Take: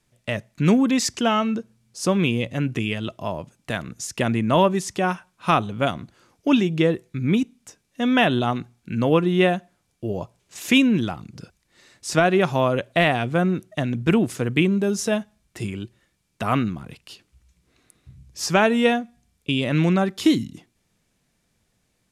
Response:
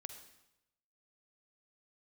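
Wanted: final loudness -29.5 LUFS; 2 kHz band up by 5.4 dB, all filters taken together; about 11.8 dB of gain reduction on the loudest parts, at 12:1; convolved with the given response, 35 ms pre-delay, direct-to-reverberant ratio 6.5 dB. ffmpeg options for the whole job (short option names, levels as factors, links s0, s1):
-filter_complex "[0:a]equalizer=f=2000:t=o:g=7,acompressor=threshold=0.0708:ratio=12,asplit=2[s0][s1];[1:a]atrim=start_sample=2205,adelay=35[s2];[s1][s2]afir=irnorm=-1:irlink=0,volume=0.794[s3];[s0][s3]amix=inputs=2:normalize=0,volume=0.841"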